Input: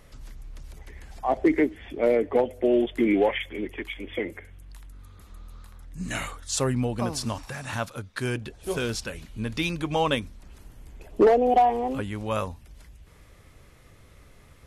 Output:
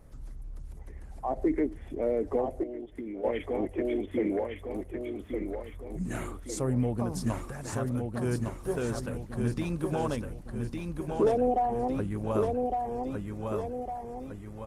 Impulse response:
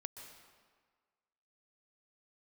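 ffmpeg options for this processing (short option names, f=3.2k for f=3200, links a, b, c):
-filter_complex "[0:a]alimiter=limit=-18dB:level=0:latency=1:release=96,equalizer=f=3.3k:w=0.51:g=-13.5,aecho=1:1:1158|2316|3474|4632|5790|6948:0.631|0.303|0.145|0.0698|0.0335|0.0161,asettb=1/sr,asplit=3[a][b][c];[a]atrim=end=7.314[d];[b]atrim=start=7.31:end=7.78,asetpts=PTS-STARTPTS,afade=t=in:d=0.004:c=qsin,afade=t=out:st=0.466:d=0.004:c=qsin,adynamicequalizer=threshold=0.00251:dfrequency=130:dqfactor=5:tfrequency=130:tqfactor=5:attack=5:release=100:ratio=0.375:range=2:mode=cutabove:tftype=bell[e];[c]atrim=start=7.776[f];[d][e]acrossfade=d=0.004:c1=hsin:c2=qsin[g];[g][f]acrossfade=d=0.004:c1=qsin:c2=hsin,lowpass=11k,asplit=3[h][i][j];[h]afade=t=out:st=2.62:d=0.02[k];[i]acompressor=threshold=-35dB:ratio=12,afade=t=in:st=2.62:d=0.02,afade=t=out:st=3.23:d=0.02[l];[j]afade=t=in:st=3.23:d=0.02[m];[k][l][m]amix=inputs=3:normalize=0" -ar 48000 -c:a libopus -b:a 20k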